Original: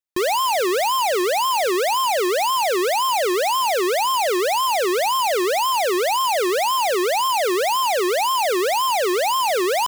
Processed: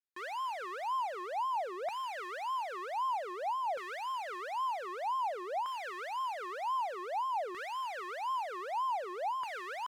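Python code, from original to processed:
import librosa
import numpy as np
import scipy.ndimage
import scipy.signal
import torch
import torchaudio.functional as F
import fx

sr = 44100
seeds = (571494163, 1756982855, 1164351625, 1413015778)

y = librosa.effects.preemphasis(x, coef=0.9, zi=[0.0])
y = 10.0 ** (-32.0 / 20.0) * np.tanh(y / 10.0 ** (-32.0 / 20.0))
y = fx.filter_lfo_bandpass(y, sr, shape='saw_down', hz=0.53, low_hz=770.0, high_hz=1600.0, q=2.0)
y = y * 10.0 ** (8.5 / 20.0)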